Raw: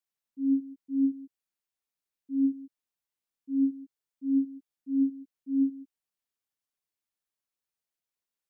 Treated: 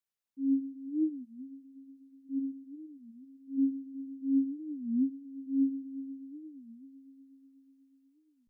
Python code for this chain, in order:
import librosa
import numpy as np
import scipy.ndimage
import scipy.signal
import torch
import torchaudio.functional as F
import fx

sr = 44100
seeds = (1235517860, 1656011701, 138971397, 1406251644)

y = fx.peak_eq(x, sr, hz=fx.line((2.38, 290.0), (3.57, 230.0)), db=-9.5, octaves=0.66, at=(2.38, 3.57), fade=0.02)
y = fx.echo_heads(y, sr, ms=122, heads='first and third', feedback_pct=70, wet_db=-15.5)
y = fx.record_warp(y, sr, rpm=33.33, depth_cents=250.0)
y = y * librosa.db_to_amplitude(-3.0)